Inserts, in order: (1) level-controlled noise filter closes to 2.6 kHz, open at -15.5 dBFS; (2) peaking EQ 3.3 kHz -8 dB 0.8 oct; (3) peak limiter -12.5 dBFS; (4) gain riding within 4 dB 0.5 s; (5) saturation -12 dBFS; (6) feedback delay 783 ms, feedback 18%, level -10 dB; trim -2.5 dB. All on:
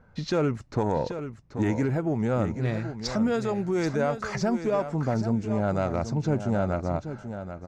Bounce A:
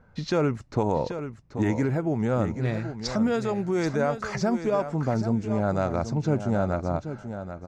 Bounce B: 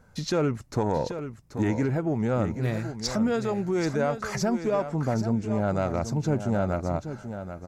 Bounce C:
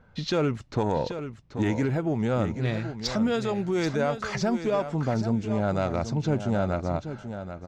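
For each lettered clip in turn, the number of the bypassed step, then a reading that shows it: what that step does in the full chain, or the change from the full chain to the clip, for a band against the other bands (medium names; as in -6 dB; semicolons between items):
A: 5, distortion -24 dB; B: 1, 8 kHz band +5.0 dB; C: 2, 4 kHz band +4.0 dB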